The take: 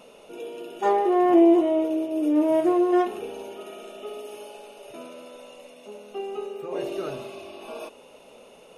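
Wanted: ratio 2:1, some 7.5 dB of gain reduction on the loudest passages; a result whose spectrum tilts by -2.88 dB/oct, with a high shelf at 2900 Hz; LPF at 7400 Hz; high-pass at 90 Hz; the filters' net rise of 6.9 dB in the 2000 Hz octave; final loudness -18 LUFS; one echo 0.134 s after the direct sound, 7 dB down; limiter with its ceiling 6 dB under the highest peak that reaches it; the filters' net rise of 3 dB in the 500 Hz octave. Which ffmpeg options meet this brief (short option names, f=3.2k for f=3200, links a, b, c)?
-af "highpass=90,lowpass=7.4k,equalizer=f=500:t=o:g=4.5,equalizer=f=2k:t=o:g=7,highshelf=f=2.9k:g=4,acompressor=threshold=-24dB:ratio=2,alimiter=limit=-19.5dB:level=0:latency=1,aecho=1:1:134:0.447,volume=11dB"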